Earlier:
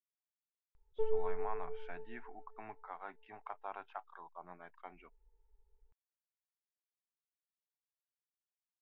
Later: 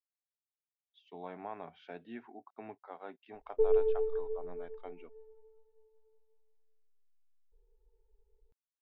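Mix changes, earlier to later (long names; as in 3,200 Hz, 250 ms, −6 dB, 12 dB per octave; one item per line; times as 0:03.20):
background: entry +2.60 s
master: add graphic EQ with 10 bands 250 Hz +7 dB, 500 Hz +9 dB, 1,000 Hz −6 dB, 2,000 Hz −4 dB, 4,000 Hz +8 dB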